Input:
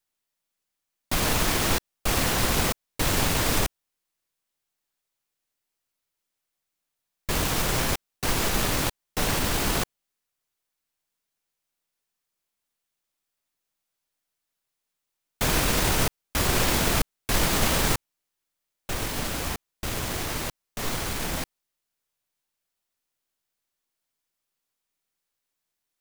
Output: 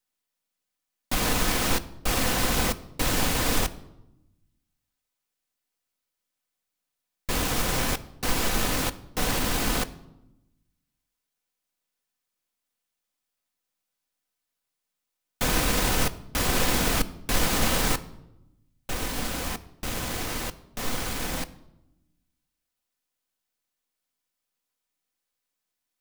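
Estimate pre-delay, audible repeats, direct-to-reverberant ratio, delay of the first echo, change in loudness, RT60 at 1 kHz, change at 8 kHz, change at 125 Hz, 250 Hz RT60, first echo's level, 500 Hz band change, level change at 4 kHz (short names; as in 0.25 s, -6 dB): 4 ms, none, 9.0 dB, none, -1.0 dB, 0.85 s, -1.0 dB, -2.5 dB, 1.4 s, none, -1.0 dB, -1.0 dB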